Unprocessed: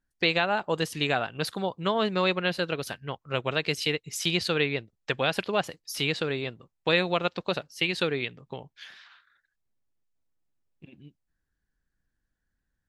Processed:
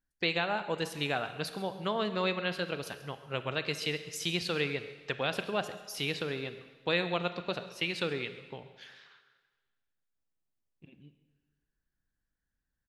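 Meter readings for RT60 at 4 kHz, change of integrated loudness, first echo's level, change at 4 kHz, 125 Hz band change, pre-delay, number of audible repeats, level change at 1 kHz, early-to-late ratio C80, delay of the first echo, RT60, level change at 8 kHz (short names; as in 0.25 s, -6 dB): 1.4 s, -5.5 dB, -18.5 dB, -5.5 dB, -5.5 dB, 25 ms, 1, -5.5 dB, 12.0 dB, 0.134 s, 1.5 s, -5.5 dB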